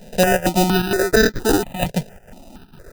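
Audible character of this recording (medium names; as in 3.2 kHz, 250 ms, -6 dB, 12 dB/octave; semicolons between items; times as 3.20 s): a buzz of ramps at a fixed pitch in blocks of 8 samples; chopped level 2.2 Hz, depth 60%, duty 80%; aliases and images of a low sample rate 1.1 kHz, jitter 0%; notches that jump at a steady rate 4.3 Hz 320–2800 Hz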